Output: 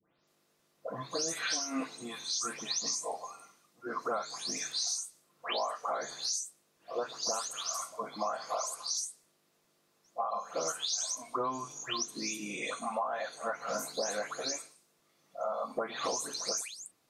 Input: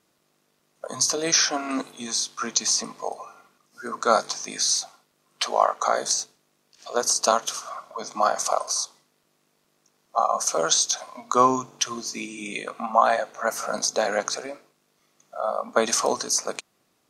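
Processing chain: delay that grows with frequency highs late, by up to 273 ms; compression 10:1, threshold -27 dBFS, peak gain reduction 14 dB; reverberation, pre-delay 4 ms, DRR 13.5 dB; trim -3.5 dB

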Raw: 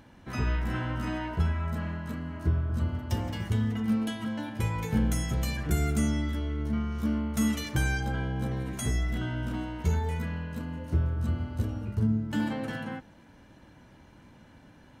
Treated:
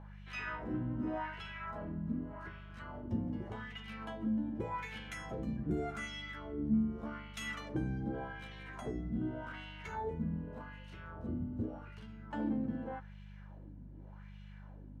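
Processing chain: wah-wah 0.85 Hz 200–2900 Hz, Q 2.1; mains buzz 50 Hz, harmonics 4, -53 dBFS -4 dB/octave; trim +2 dB

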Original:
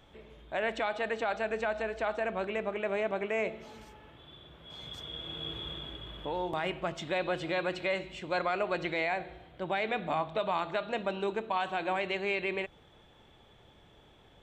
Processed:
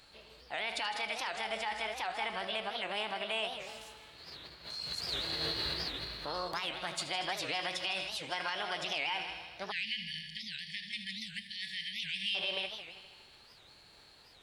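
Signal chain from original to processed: tilt shelf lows -8 dB, about 1.3 kHz; multi-head delay 79 ms, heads first and second, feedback 58%, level -15 dB; formant shift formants +4 st; peak limiter -24.5 dBFS, peak gain reduction 8.5 dB; spectral selection erased 9.72–12.35 s, 220–1700 Hz; whistle 1.6 kHz -76 dBFS; warped record 78 rpm, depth 250 cents

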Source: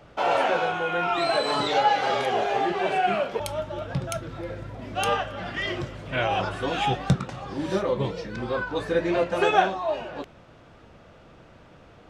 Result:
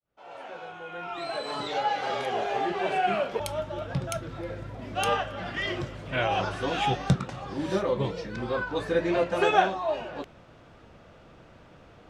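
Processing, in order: fade-in on the opening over 3.34 s; 6.31–7.14 s: mains buzz 400 Hz, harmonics 16, -47 dBFS -3 dB/octave; trim -1.5 dB

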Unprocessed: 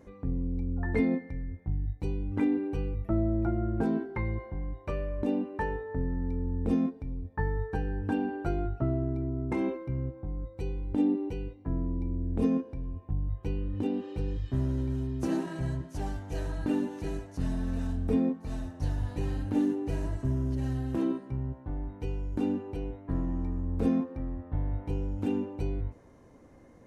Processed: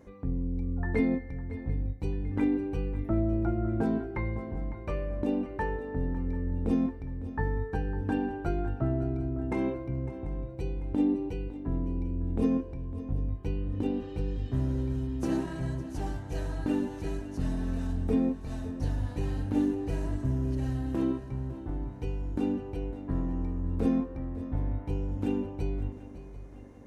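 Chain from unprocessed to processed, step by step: shuffle delay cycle 740 ms, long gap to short 3:1, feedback 41%, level -15 dB

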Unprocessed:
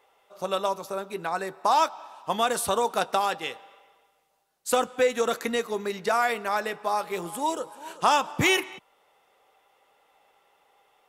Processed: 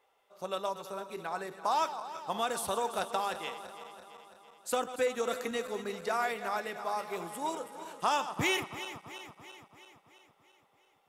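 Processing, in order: backward echo that repeats 167 ms, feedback 75%, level -12 dB; trim -8 dB

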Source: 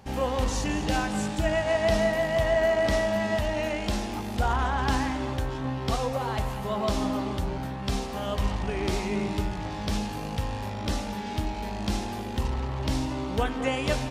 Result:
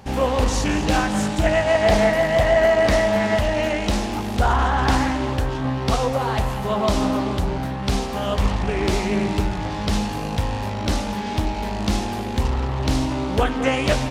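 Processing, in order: loudspeaker Doppler distortion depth 0.38 ms; trim +7 dB

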